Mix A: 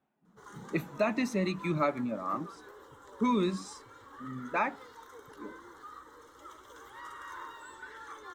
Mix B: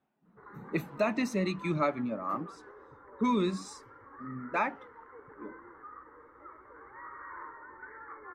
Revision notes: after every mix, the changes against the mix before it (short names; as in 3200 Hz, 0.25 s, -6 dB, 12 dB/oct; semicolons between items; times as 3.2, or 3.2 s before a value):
background: add Chebyshev low-pass 2200 Hz, order 8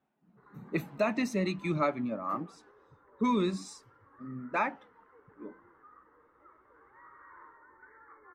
background -9.0 dB